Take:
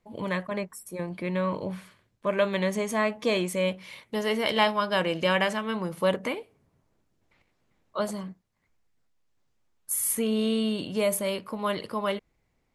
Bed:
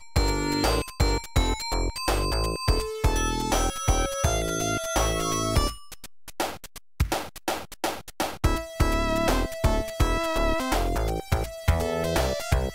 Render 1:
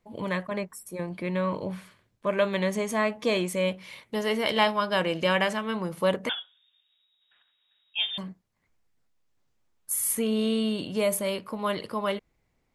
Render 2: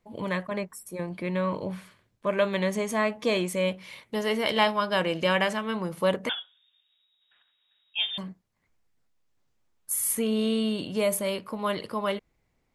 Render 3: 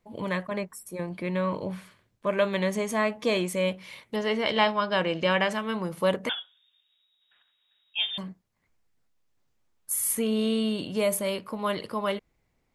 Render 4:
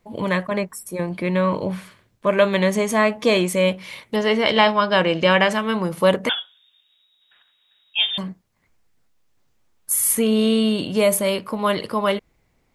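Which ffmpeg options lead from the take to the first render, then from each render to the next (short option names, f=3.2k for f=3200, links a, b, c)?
-filter_complex "[0:a]asettb=1/sr,asplit=3[a][b][c];[a]atrim=end=6.294[d];[b]atrim=start=6.29:end=8.18,asetpts=PTS-STARTPTS,afade=t=in:d=0.004:c=qsin,afade=t=out:st=1.886:d=0.004:c=qsin,lowpass=f=3.2k:t=q:w=0.5098,lowpass=f=3.2k:t=q:w=0.6013,lowpass=f=3.2k:t=q:w=0.9,lowpass=f=3.2k:t=q:w=2.563,afreqshift=-3800[e];[c]atrim=start=8.176[f];[d][e]acrossfade=d=0.004:c1=hsin:c2=qsin[g];[g][f]acrossfade=d=0.004:c1=qsin:c2=hsin"
-af anull
-filter_complex "[0:a]asettb=1/sr,asplit=3[a][b][c];[a]atrim=end=4.164[d];[b]atrim=start=4.16:end=5.51,asetpts=PTS-STARTPTS,afade=t=in:d=0.004:c=qsin,afade=t=out:st=1.346:d=0.004:c=qsin,lowpass=5.4k[e];[c]atrim=start=5.506[f];[d][e]acrossfade=d=0.004:c1=hsin:c2=qsin[g];[g][f]acrossfade=d=0.004:c1=qsin:c2=hsin"
-af "volume=8dB,alimiter=limit=-1dB:level=0:latency=1"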